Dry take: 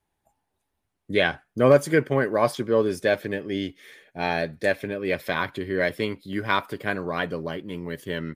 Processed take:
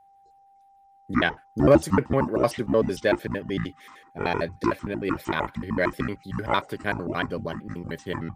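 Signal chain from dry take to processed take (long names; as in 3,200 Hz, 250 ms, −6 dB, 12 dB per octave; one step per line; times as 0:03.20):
pitch shifter gated in a rhythm −9.5 semitones, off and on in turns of 76 ms
steady tone 790 Hz −54 dBFS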